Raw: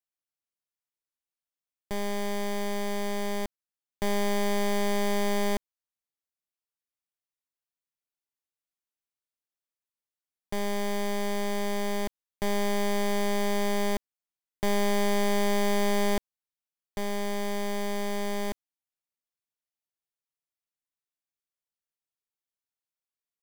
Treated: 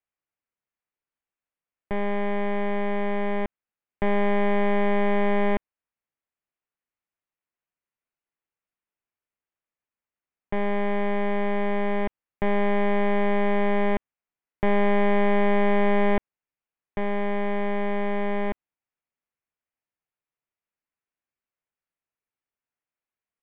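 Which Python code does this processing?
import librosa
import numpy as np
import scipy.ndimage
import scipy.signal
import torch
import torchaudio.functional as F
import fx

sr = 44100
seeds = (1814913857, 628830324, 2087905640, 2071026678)

y = scipy.signal.sosfilt(scipy.signal.butter(6, 2700.0, 'lowpass', fs=sr, output='sos'), x)
y = y * librosa.db_to_amplitude(5.0)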